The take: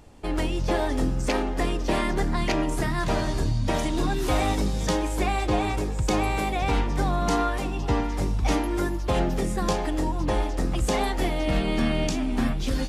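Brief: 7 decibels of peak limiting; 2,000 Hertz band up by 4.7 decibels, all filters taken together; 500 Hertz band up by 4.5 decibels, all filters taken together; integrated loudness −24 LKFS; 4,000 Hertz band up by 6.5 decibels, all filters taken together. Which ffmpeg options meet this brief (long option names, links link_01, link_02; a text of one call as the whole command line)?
ffmpeg -i in.wav -af "equalizer=frequency=500:width_type=o:gain=5.5,equalizer=frequency=2000:width_type=o:gain=3.5,equalizer=frequency=4000:width_type=o:gain=7,volume=1dB,alimiter=limit=-13dB:level=0:latency=1" out.wav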